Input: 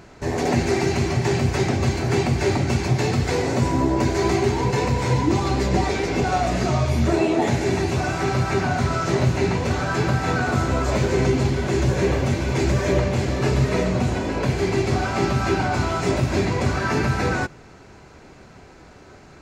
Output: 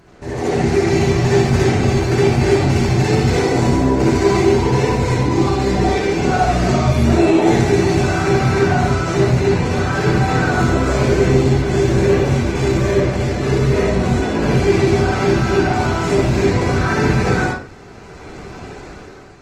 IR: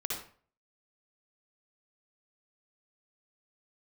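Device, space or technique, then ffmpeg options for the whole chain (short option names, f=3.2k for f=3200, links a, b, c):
speakerphone in a meeting room: -filter_complex "[1:a]atrim=start_sample=2205[a];[0:a][a]afir=irnorm=-1:irlink=0,dynaudnorm=f=270:g=5:m=11.5dB,volume=-1.5dB" -ar 48000 -c:a libopus -b:a 20k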